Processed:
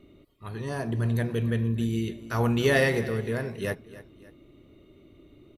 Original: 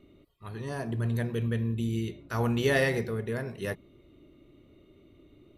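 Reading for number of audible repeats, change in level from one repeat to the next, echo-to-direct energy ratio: 2, -7.0 dB, -16.0 dB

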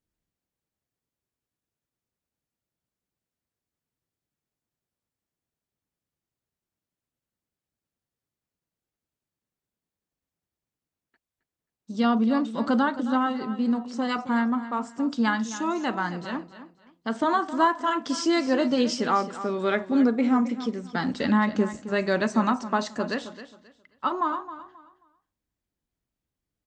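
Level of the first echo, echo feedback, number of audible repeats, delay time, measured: -13.5 dB, 25%, 2, 0.267 s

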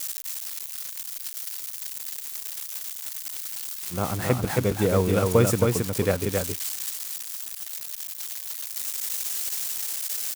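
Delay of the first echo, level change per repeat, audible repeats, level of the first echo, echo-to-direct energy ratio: 0.27 s, no steady repeat, 1, -3.5 dB, -3.5 dB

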